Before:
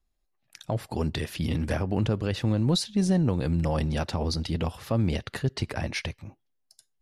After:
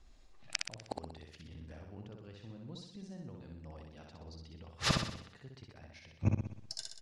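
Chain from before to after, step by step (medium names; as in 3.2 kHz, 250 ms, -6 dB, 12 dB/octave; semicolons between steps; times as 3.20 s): low-pass 7.4 kHz 24 dB/octave; inverted gate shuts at -32 dBFS, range -41 dB; feedback delay 62 ms, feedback 53%, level -3.5 dB; trim +15.5 dB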